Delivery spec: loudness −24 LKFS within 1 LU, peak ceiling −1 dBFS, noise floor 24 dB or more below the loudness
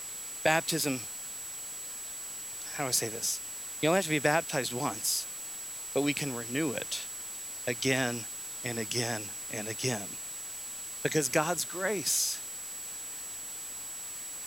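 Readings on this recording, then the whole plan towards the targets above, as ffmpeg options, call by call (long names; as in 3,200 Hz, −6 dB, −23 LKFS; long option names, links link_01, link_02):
interfering tone 7,800 Hz; level of the tone −39 dBFS; background noise floor −41 dBFS; target noise floor −56 dBFS; integrated loudness −31.5 LKFS; sample peak −10.5 dBFS; target loudness −24.0 LKFS
→ -af "bandreject=frequency=7800:width=30"
-af "afftdn=noise_reduction=15:noise_floor=-41"
-af "volume=7.5dB"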